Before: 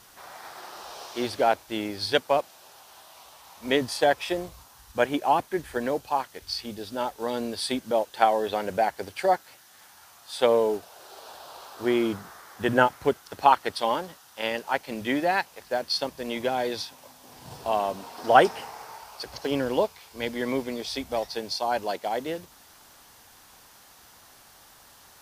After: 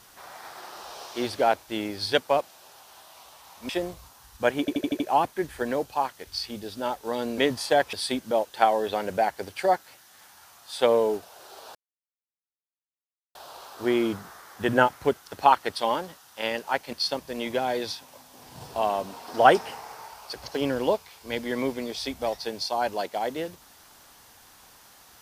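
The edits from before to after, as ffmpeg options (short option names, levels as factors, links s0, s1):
-filter_complex "[0:a]asplit=11[s0][s1][s2][s3][s4][s5][s6][s7][s8][s9][s10];[s0]atrim=end=3.692[s11];[s1]atrim=start=4.238:end=5.232[s12];[s2]atrim=start=5.148:end=5.232[s13];[s3]atrim=start=5.148:end=5.232[s14];[s4]atrim=start=5.148:end=5.232[s15];[s5]atrim=start=5.148:end=5.232[s16];[s6]atrim=start=5.148:end=7.532[s17];[s7]atrim=start=3.688:end=4.242[s18];[s8]atrim=start=7.528:end=11.35,asetpts=PTS-STARTPTS,afade=t=out:st=3.818:d=0.004:c=hsin,apad=pad_dur=1.6[s19];[s9]atrim=start=11.35:end=14.932,asetpts=PTS-STARTPTS,afade=t=in:d=0.004:c=hsin[s20];[s10]atrim=start=15.828[s21];[s11][s12]acrossfade=d=0.004:c1=hsin:c2=hsin[s22];[s22][s13]acrossfade=d=0.004:c1=hsin:c2=hsin[s23];[s23][s14]acrossfade=d=0.004:c1=hsin:c2=hsin[s24];[s24][s15]acrossfade=d=0.004:c1=hsin:c2=hsin[s25];[s25][s16]acrossfade=d=0.004:c1=hsin:c2=hsin[s26];[s26][s17]acrossfade=d=0.004:c1=hsin:c2=hsin[s27];[s27][s18]acrossfade=d=0.004:c1=hsin:c2=hsin[s28];[s19][s20]concat=n=2:v=0:a=1[s29];[s28][s29]acrossfade=d=0.004:c1=hsin:c2=hsin[s30];[s30][s21]acrossfade=d=0.004:c1=hsin:c2=hsin"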